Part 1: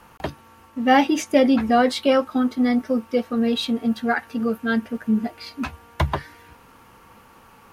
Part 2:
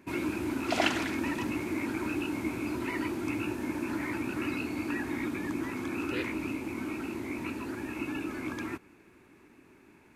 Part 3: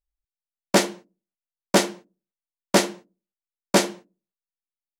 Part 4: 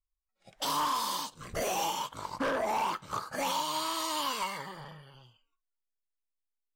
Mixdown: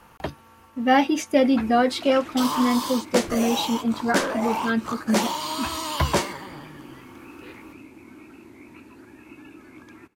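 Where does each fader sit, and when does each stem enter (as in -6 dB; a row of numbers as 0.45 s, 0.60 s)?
-2.0 dB, -10.0 dB, -6.0 dB, +3.0 dB; 0.00 s, 1.30 s, 2.40 s, 1.75 s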